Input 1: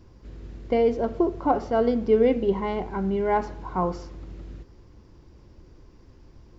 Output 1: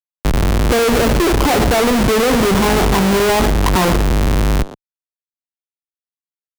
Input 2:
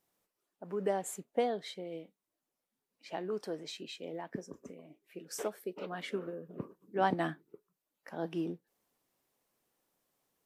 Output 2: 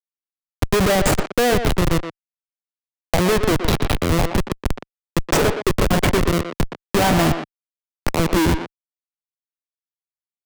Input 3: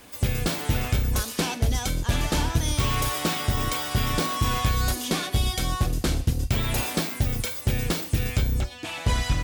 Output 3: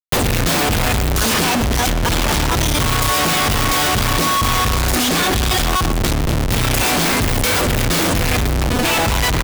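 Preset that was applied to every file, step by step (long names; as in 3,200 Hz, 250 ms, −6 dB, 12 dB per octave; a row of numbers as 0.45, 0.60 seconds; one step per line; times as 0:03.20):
comparator with hysteresis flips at −37.5 dBFS
far-end echo of a speakerphone 120 ms, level −8 dB
multiband upward and downward compressor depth 40%
normalise the peak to −2 dBFS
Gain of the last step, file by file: +13.0, +24.0, +8.0 decibels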